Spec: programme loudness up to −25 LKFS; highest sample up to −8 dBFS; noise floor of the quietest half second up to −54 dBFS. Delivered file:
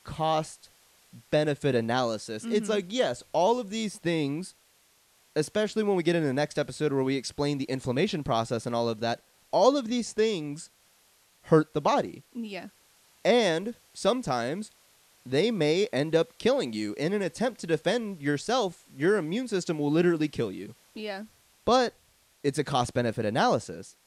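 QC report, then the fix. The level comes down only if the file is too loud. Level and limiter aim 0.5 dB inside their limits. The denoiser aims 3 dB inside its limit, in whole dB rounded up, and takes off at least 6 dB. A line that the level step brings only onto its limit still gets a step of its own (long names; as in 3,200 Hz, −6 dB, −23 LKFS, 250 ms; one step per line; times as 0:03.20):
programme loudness −28.0 LKFS: in spec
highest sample −9.0 dBFS: in spec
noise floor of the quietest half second −64 dBFS: in spec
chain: no processing needed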